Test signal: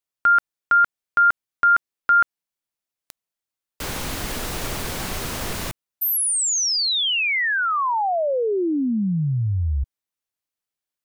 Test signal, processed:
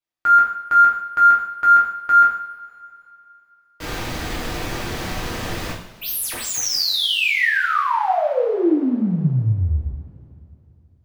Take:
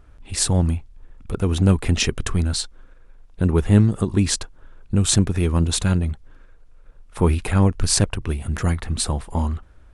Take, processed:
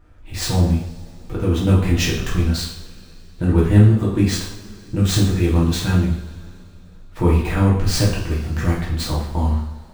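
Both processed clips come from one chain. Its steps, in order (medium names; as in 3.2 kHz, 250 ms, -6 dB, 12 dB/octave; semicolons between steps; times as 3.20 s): median filter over 5 samples; two-slope reverb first 0.57 s, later 3.1 s, from -21 dB, DRR -6 dB; trim -4.5 dB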